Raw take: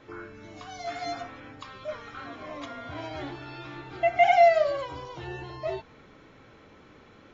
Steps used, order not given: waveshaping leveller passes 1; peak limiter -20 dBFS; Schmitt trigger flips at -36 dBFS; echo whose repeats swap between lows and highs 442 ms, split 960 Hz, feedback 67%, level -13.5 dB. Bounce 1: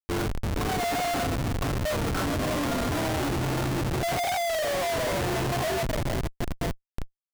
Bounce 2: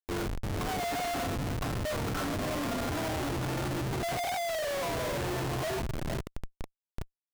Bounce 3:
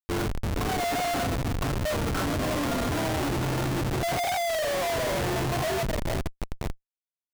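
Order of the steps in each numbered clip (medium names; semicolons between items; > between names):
echo whose repeats swap between lows and highs > waveshaping leveller > Schmitt trigger > peak limiter; peak limiter > echo whose repeats swap between lows and highs > waveshaping leveller > Schmitt trigger; waveshaping leveller > echo whose repeats swap between lows and highs > Schmitt trigger > peak limiter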